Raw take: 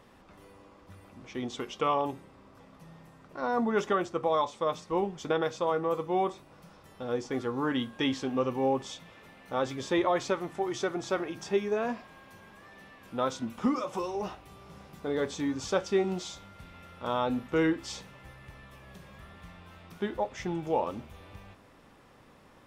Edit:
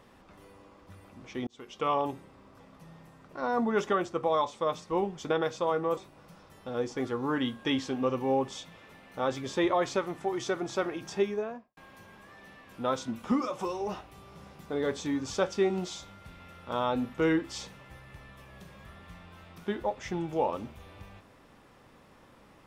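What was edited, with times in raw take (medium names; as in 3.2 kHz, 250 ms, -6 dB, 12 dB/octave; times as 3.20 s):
1.47–1.94 s: fade in
5.97–6.31 s: delete
11.53–12.11 s: studio fade out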